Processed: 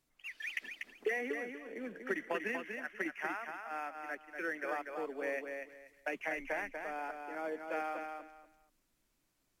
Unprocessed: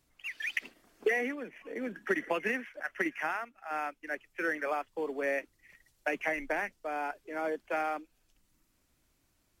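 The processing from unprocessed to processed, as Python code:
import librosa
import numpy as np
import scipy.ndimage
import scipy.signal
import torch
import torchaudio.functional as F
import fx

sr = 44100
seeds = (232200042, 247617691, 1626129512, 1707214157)

p1 = fx.peak_eq(x, sr, hz=76.0, db=-10.5, octaves=0.87)
p2 = p1 + fx.echo_feedback(p1, sr, ms=241, feedback_pct=22, wet_db=-5.5, dry=0)
y = p2 * 10.0 ** (-6.0 / 20.0)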